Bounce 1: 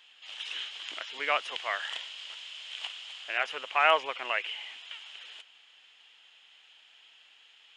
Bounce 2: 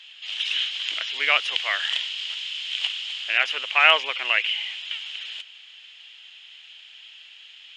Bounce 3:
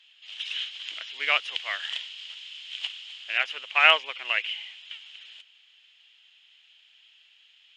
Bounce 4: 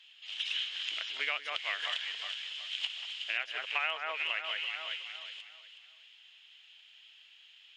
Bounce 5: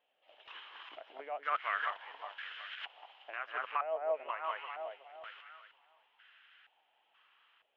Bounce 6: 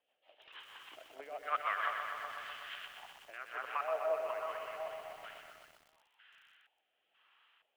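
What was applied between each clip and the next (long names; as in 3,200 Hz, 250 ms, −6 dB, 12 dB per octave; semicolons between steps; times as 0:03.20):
meter weighting curve D; level +1 dB
expander for the loud parts 1.5 to 1, over −35 dBFS; level −1 dB
on a send: delay that swaps between a low-pass and a high-pass 184 ms, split 2,000 Hz, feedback 58%, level −6 dB; on the sum: downward compressor 8 to 1, threshold −30 dBFS, peak gain reduction 18 dB
brickwall limiter −25 dBFS, peak gain reduction 9 dB; low-pass on a step sequencer 2.1 Hz 630–1,500 Hz; level +1 dB
rotating-speaker cabinet horn 6.3 Hz, later 0.85 Hz, at 0:02.33; feedback echo at a low word length 125 ms, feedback 80%, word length 10 bits, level −6 dB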